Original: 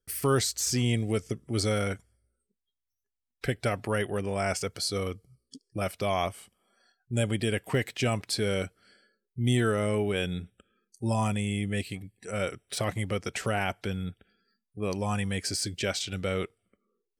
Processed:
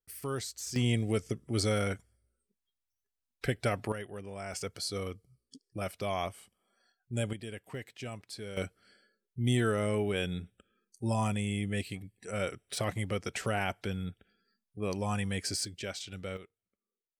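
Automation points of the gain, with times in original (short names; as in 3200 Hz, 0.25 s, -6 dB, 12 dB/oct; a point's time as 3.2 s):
-11 dB
from 0.76 s -2 dB
from 3.92 s -12 dB
from 4.53 s -5.5 dB
from 7.33 s -14 dB
from 8.57 s -3 dB
from 15.65 s -9 dB
from 16.37 s -18.5 dB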